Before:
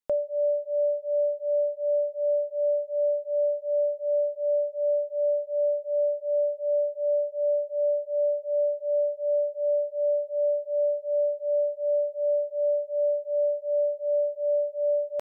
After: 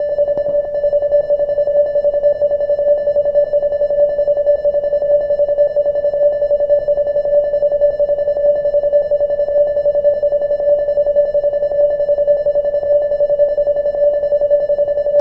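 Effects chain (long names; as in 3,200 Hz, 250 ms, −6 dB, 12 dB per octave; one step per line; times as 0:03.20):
slices reordered back to front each 93 ms, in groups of 6
in parallel at −7.5 dB: soft clipping −32 dBFS, distortion −9 dB
on the sum: background noise brown −52 dBFS
convolution reverb RT60 0.70 s, pre-delay 111 ms, DRR 2.5 dB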